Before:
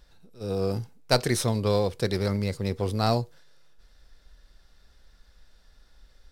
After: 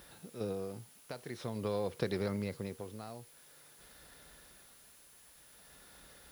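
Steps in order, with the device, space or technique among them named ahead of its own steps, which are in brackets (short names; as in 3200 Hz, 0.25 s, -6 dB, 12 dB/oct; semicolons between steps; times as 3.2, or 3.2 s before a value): medium wave at night (BPF 130–3500 Hz; compressor 6:1, threshold -39 dBFS, peak gain reduction 21 dB; tremolo 0.49 Hz, depth 77%; whine 10000 Hz -70 dBFS; white noise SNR 20 dB); gain +7.5 dB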